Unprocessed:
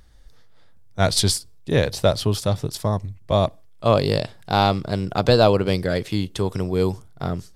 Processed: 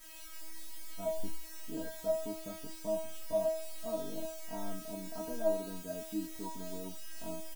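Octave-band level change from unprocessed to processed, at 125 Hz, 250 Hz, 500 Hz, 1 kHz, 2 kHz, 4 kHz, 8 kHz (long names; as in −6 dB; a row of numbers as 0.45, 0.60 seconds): −30.5, −17.0, −15.0, −22.0, −22.0, −24.5, −16.0 decibels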